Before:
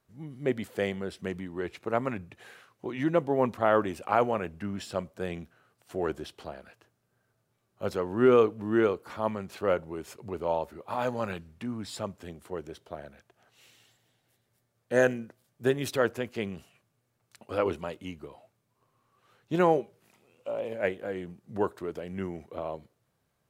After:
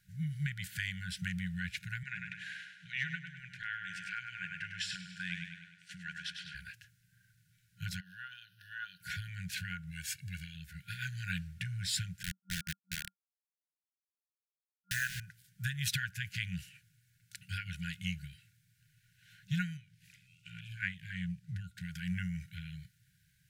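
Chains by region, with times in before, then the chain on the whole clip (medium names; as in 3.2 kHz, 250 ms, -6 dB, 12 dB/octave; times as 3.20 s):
2.03–6.55 s: high-pass 300 Hz + distance through air 77 m + feedback delay 101 ms, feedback 51%, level -7 dB
8.00–9.01 s: high-pass 490 Hz + static phaser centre 2.2 kHz, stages 6 + compression 10:1, threshold -40 dBFS
9.91–10.56 s: bass shelf 430 Hz -8 dB + comb 1.8 ms, depth 78%
12.23–15.20 s: high-pass 60 Hz 24 dB/octave + de-hum 126.4 Hz, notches 38 + word length cut 6-bit, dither none
19.77–21.81 s: treble shelf 7.9 kHz -10 dB + step-sequenced notch 6 Hz 710–1900 Hz
whole clip: compression 4:1, threshold -33 dBFS; FFT band-reject 190–1400 Hz; trim +7.5 dB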